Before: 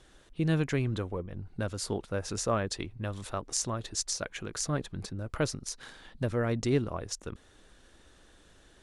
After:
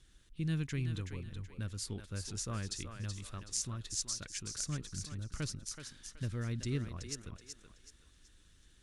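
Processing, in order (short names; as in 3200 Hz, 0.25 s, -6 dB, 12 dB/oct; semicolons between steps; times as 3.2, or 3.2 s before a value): passive tone stack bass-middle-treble 6-0-2; on a send: thinning echo 0.376 s, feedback 34%, high-pass 390 Hz, level -6.5 dB; on the sum: gain +10 dB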